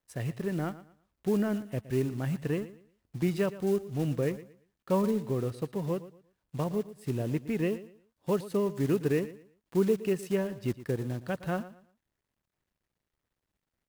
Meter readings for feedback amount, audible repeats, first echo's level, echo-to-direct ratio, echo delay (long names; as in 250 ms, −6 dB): 27%, 2, −16.0 dB, −15.5 dB, 116 ms